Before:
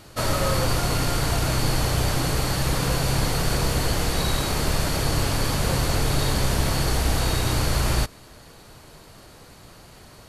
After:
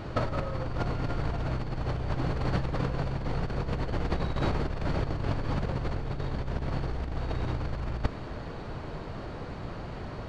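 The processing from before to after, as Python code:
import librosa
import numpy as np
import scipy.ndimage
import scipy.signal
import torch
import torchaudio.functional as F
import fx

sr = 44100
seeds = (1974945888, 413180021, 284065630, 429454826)

y = fx.over_compress(x, sr, threshold_db=-28.0, ratio=-0.5)
y = fx.spacing_loss(y, sr, db_at_10k=35)
y = y * 10.0 ** (2.5 / 20.0)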